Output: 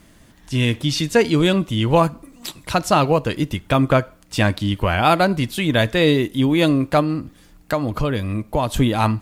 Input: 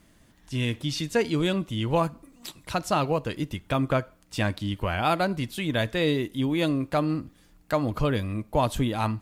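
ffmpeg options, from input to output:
-filter_complex "[0:a]asettb=1/sr,asplit=3[a][b][c];[a]atrim=end=7.004[d];[b]atrim=start=7:end=8.74,asetpts=PTS-STARTPTS,afade=t=in:d=0.004:c=qsin,afade=t=out:st=1.736:d=0.004:c=qsin,acompressor=threshold=-29dB:ratio=2[e];[c]atrim=start=8.736[f];[d][e]acrossfade=d=0.004:c1=hsin:c2=qsin[g];[g][f]acrossfade=d=0.004:c1=qsin:c2=hsin,volume=8.5dB"

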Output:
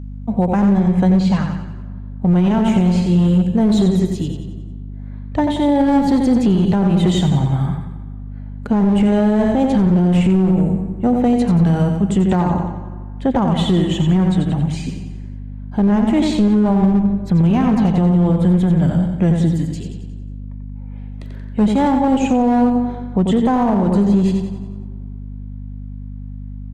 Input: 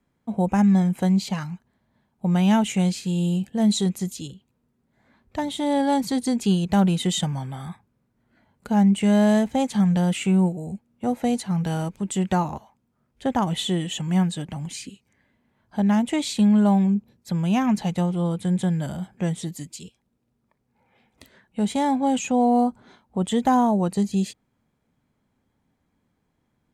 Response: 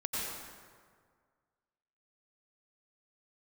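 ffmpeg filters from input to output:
-filter_complex "[0:a]acrossover=split=460[a][b];[a]dynaudnorm=f=270:g=13:m=4dB[c];[b]aemphasis=mode=reproduction:type=75kf[d];[c][d]amix=inputs=2:normalize=0,asettb=1/sr,asplit=3[e][f][g];[e]atrim=end=19.814[h];[f]atrim=start=19.81:end=22.08,asetpts=PTS-STARTPTS,afade=t=in:d=0.004:c=qsin,afade=t=out:st=2.266:d=0.004:c=qsin,highpass=170[i];[g]atrim=start=22.076[j];[h][i]acrossfade=d=0.004:c1=hsin:c2=qsin[k];[k][j]acrossfade=d=0.004:c1=qsin:c2=hsin,aecho=1:1:90|180|270|360|450|540:0.501|0.241|0.115|0.0554|0.0266|0.0128,aeval=exprs='clip(val(0),-1,0.141)':c=same,aeval=exprs='val(0)+0.0158*(sin(2*PI*50*n/s)+sin(2*PI*2*50*n/s)/2+sin(2*PI*3*50*n/s)/3+sin(2*PI*4*50*n/s)/4+sin(2*PI*5*50*n/s)/5)':c=same,asplit=2[l][m];[1:a]atrim=start_sample=2205,lowpass=3.4k[n];[m][n]afir=irnorm=-1:irlink=0,volume=-19.5dB[o];[l][o]amix=inputs=2:normalize=0,alimiter=limit=-13.5dB:level=0:latency=1:release=82,asplit=3[p][q][r];[p]afade=t=out:st=0.77:d=0.02[s];[q]lowpass=9k,afade=t=in:st=0.77:d=0.02,afade=t=out:st=1.46:d=0.02[t];[r]afade=t=in:st=1.46:d=0.02[u];[s][t][u]amix=inputs=3:normalize=0,volume=7dB" -ar 48000 -c:a libopus -b:a 32k

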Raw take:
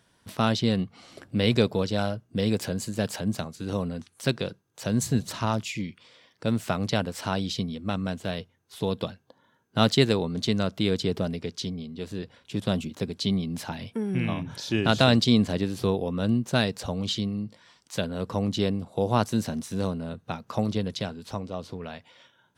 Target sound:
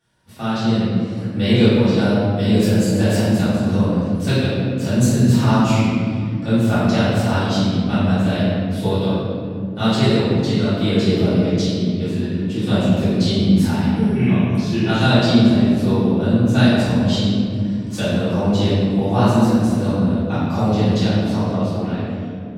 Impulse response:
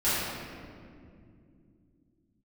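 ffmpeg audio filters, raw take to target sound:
-filter_complex "[0:a]dynaudnorm=f=150:g=11:m=11.5dB[a];[1:a]atrim=start_sample=2205[b];[a][b]afir=irnorm=-1:irlink=0,volume=-12dB"

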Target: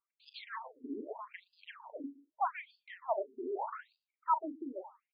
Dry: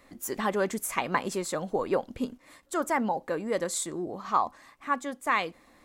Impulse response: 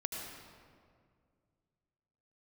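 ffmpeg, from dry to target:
-filter_complex "[0:a]anlmdn=0.631,firequalizer=gain_entry='entry(160,0);entry(240,-3);entry(430,-17);entry(810,6);entry(1200,-13);entry(2000,-12);entry(5300,-4);entry(8300,-28);entry(14000,-7)':delay=0.05:min_phase=1,areverse,acompressor=mode=upward:threshold=-42dB:ratio=2.5,areverse,asetrate=50274,aresample=44100,alimiter=level_in=1.5dB:limit=-24dB:level=0:latency=1:release=13,volume=-1.5dB,asplit=2[a][b];[b]adelay=39,volume=-10.5dB[c];[a][c]amix=inputs=2:normalize=0,asplit=2[d][e];[e]adelay=118,lowpass=f=3.3k:p=1,volume=-22dB,asplit=2[f][g];[g]adelay=118,lowpass=f=3.3k:p=1,volume=0.23[h];[f][h]amix=inputs=2:normalize=0[i];[d][i]amix=inputs=2:normalize=0,afftfilt=real='re*between(b*sr/1024,310*pow(3600/310,0.5+0.5*sin(2*PI*0.81*pts/sr))/1.41,310*pow(3600/310,0.5+0.5*sin(2*PI*0.81*pts/sr))*1.41)':imag='im*between(b*sr/1024,310*pow(3600/310,0.5+0.5*sin(2*PI*0.81*pts/sr))/1.41,310*pow(3600/310,0.5+0.5*sin(2*PI*0.81*pts/sr))*1.41)':win_size=1024:overlap=0.75,volume=7dB"

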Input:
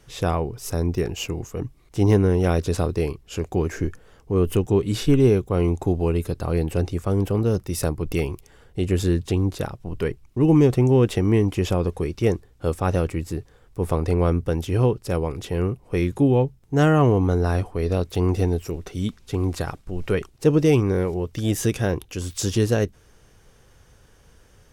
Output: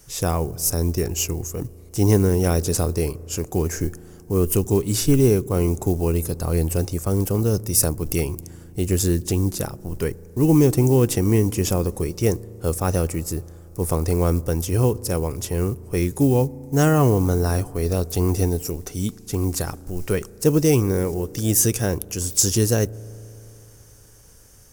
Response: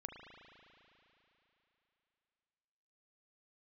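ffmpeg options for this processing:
-filter_complex "[0:a]acrusher=bits=9:mode=log:mix=0:aa=0.000001,aexciter=amount=5.8:drive=2.7:freq=5k,asplit=2[a][b];[1:a]atrim=start_sample=2205,lowpass=1.6k,lowshelf=f=410:g=10[c];[b][c]afir=irnorm=-1:irlink=0,volume=-15.5dB[d];[a][d]amix=inputs=2:normalize=0,volume=-1dB"

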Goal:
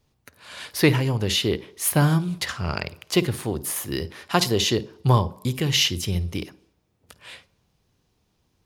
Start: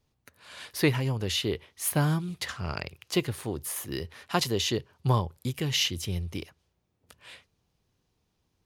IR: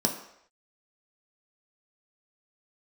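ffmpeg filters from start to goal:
-filter_complex "[0:a]asplit=2[a][b];[1:a]atrim=start_sample=2205,asetrate=41013,aresample=44100,adelay=52[c];[b][c]afir=irnorm=-1:irlink=0,volume=-27dB[d];[a][d]amix=inputs=2:normalize=0,volume=6dB"

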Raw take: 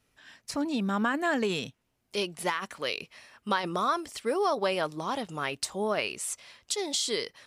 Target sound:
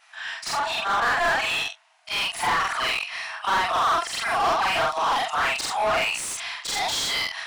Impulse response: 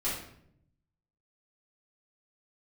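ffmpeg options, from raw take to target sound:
-filter_complex "[0:a]afftfilt=real='re':imag='-im':win_size=4096:overlap=0.75,asplit=2[a][b];[b]asoftclip=type=hard:threshold=-34.5dB,volume=-7dB[c];[a][c]amix=inputs=2:normalize=0,afftfilt=real='re*between(b*sr/4096,630,11000)':imag='im*between(b*sr/4096,630,11000)':win_size=4096:overlap=0.75,asplit=2[d][e];[e]highpass=f=720:p=1,volume=27dB,asoftclip=type=tanh:threshold=-18.5dB[f];[d][f]amix=inputs=2:normalize=0,lowpass=f=2.5k:p=1,volume=-6dB,volume=4dB"

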